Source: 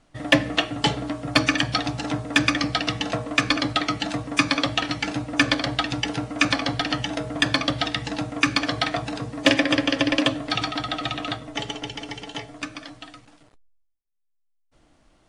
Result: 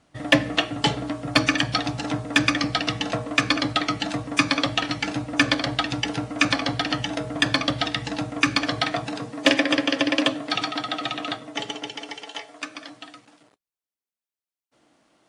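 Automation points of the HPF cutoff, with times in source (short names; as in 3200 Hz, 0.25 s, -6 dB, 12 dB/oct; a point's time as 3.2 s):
8.72 s 66 Hz
9.37 s 200 Hz
11.73 s 200 Hz
12.42 s 570 Hz
12.95 s 200 Hz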